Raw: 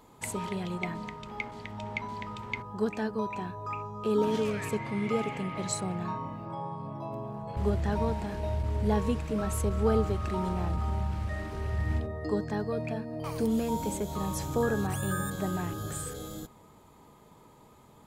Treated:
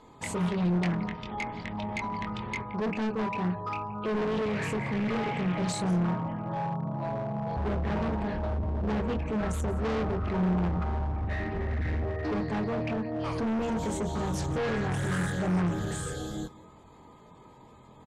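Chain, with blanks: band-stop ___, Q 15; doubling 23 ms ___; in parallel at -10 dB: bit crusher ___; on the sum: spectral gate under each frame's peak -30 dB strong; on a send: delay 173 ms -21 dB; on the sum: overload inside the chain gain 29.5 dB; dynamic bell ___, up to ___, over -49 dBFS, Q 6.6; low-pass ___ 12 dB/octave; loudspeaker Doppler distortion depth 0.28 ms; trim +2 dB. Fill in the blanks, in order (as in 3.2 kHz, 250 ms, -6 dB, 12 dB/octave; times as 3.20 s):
1.4 kHz, -4.5 dB, 7-bit, 180 Hz, +6 dB, 6.7 kHz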